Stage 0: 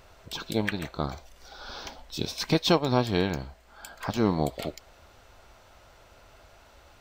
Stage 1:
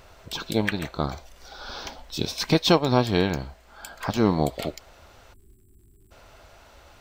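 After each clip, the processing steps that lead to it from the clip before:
time-frequency box erased 0:05.33–0:06.11, 430–7,400 Hz
surface crackle 130 per second −61 dBFS
level +3.5 dB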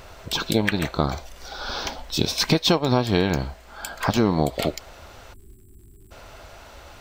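downward compressor 4 to 1, threshold −23 dBFS, peak gain reduction 10 dB
level +7 dB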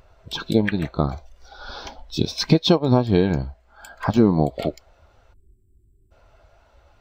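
every bin expanded away from the loudest bin 1.5 to 1
level +2 dB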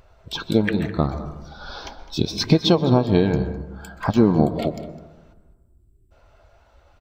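single-tap delay 207 ms −18 dB
convolution reverb RT60 1.2 s, pre-delay 121 ms, DRR 12 dB

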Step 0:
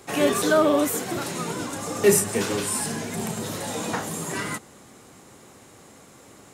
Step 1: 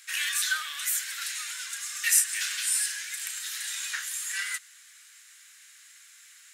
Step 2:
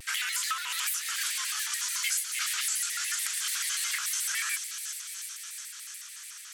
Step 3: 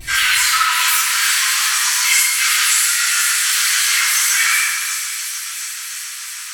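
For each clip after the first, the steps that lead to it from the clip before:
elliptic high-pass filter 1,600 Hz, stop band 70 dB; level +2 dB
downward compressor 6 to 1, threshold −33 dBFS, peak gain reduction 15.5 dB; delay with a high-pass on its return 349 ms, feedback 77%, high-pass 3,700 Hz, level −7 dB; pitch modulation by a square or saw wave square 6.9 Hz, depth 250 cents; level +4.5 dB
convolution reverb RT60 2.4 s, pre-delay 3 ms, DRR −15.5 dB; level −1.5 dB

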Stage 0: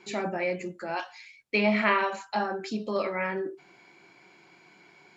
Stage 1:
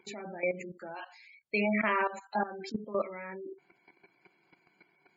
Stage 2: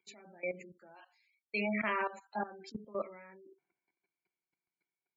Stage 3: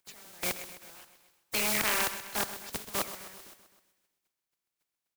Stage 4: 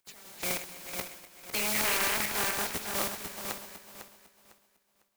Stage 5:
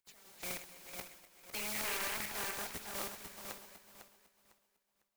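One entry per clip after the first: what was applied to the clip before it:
gate on every frequency bin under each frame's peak −20 dB strong; output level in coarse steps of 14 dB
multiband upward and downward expander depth 70%; level −7.5 dB
compressing power law on the bin magnitudes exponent 0.17; on a send: repeating echo 129 ms, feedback 57%, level −13 dB; on the sum: level +5.5 dB
feedback delay that plays each chunk backwards 251 ms, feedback 51%, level −1 dB; in parallel at −5 dB: hard clipping −29 dBFS, distortion −7 dB; on the sum: level −4 dB
flanger 1.8 Hz, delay 0.4 ms, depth 2.2 ms, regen +76%; level −5 dB

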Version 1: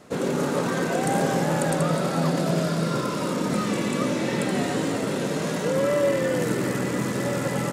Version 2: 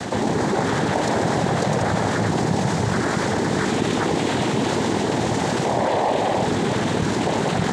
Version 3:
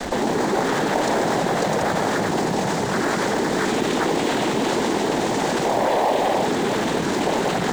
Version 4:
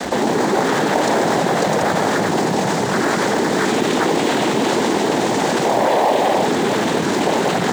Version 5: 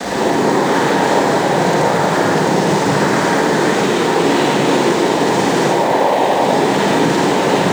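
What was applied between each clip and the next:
cochlear-implant simulation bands 6; envelope flattener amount 70%
high-pass filter 240 Hz 12 dB per octave; in parallel at −11.5 dB: comparator with hysteresis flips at −25 dBFS
high-pass filter 94 Hz; level +4 dB
brickwall limiter −14 dBFS, peak gain reduction 10 dB; convolution reverb RT60 1.4 s, pre-delay 37 ms, DRR −6 dB; level +1 dB

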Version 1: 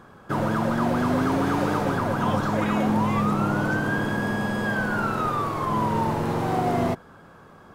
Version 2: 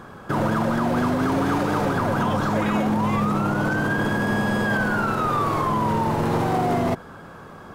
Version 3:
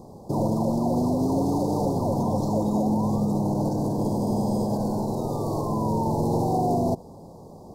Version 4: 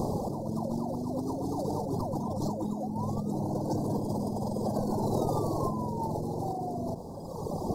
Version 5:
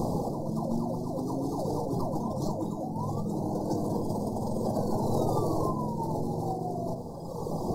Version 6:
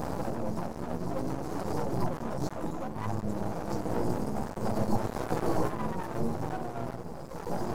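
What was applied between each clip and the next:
brickwall limiter −21.5 dBFS, peak gain reduction 10.5 dB; level +7.5 dB
inverse Chebyshev band-stop filter 1,300–3,100 Hz, stop band 40 dB; level −1 dB
reverb reduction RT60 1.2 s; compressor whose output falls as the input rises −37 dBFS, ratio −1; level +5.5 dB
rectangular room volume 200 cubic metres, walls furnished, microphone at 0.71 metres
multi-voice chorus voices 2, 0.62 Hz, delay 13 ms, depth 4.2 ms; half-wave rectification; level +5 dB

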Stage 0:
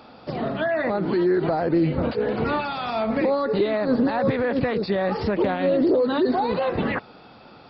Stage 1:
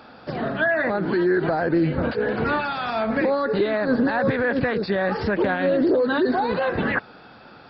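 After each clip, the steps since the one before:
parametric band 1,600 Hz +10 dB 0.34 octaves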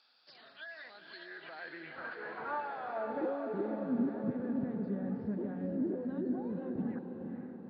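band-pass filter sweep 4,600 Hz → 210 Hz, 0:01.02–0:03.83
feedback delay with all-pass diffusion 480 ms, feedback 55%, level −5.5 dB
level −8.5 dB

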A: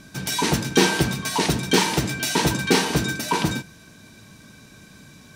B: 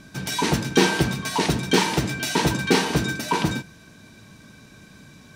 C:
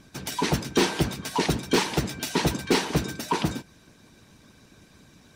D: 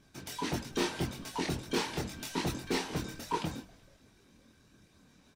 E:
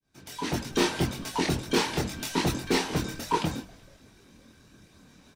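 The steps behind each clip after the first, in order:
high-shelf EQ 5,600 Hz −5.5 dB
harmonic and percussive parts rebalanced harmonic −13 dB; gain into a clipping stage and back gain 14 dB
echo with shifted repeats 188 ms, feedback 63%, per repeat −140 Hz, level −23.5 dB; multi-voice chorus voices 4, 0.71 Hz, delay 24 ms, depth 2.1 ms; level −6.5 dB
fade in at the beginning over 0.70 s; level +7 dB

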